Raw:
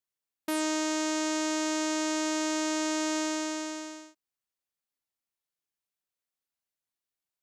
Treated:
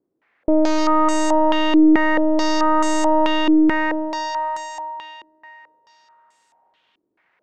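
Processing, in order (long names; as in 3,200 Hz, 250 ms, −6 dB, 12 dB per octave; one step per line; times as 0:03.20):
echo with a time of its own for lows and highs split 530 Hz, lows 217 ms, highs 300 ms, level −13 dB
mid-hump overdrive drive 34 dB, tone 1,000 Hz, clips at −17.5 dBFS
low-pass on a step sequencer 4.6 Hz 320–8,000 Hz
level +7 dB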